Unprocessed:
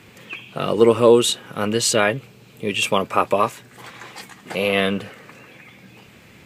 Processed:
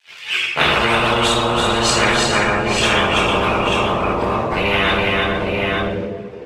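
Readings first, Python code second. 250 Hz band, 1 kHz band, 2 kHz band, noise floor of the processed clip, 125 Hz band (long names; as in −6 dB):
+2.5 dB, +7.5 dB, +10.0 dB, −34 dBFS, +7.0 dB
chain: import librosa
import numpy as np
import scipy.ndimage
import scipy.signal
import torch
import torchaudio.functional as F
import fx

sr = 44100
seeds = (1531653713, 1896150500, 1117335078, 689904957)

p1 = fx.schmitt(x, sr, flips_db=-19.0)
p2 = x + F.gain(torch.from_numpy(p1), -10.0).numpy()
p3 = fx.rotary(p2, sr, hz=6.3)
p4 = np.sign(p3) * np.maximum(np.abs(p3) - 10.0 ** (-44.5 / 20.0), 0.0)
p5 = fx.rev_double_slope(p4, sr, seeds[0], early_s=0.58, late_s=1.7, knee_db=-17, drr_db=-4.0)
p6 = fx.chorus_voices(p5, sr, voices=6, hz=0.55, base_ms=13, depth_ms=1.4, mix_pct=65)
p7 = p6 + fx.echo_multitap(p6, sr, ms=(331, 452, 839, 888), db=(-4.0, -12.0, -14.0, -7.5), dry=0)
p8 = fx.filter_sweep_bandpass(p7, sr, from_hz=2700.0, to_hz=360.0, start_s=0.39, end_s=1.37, q=1.7)
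y = fx.spectral_comp(p8, sr, ratio=10.0)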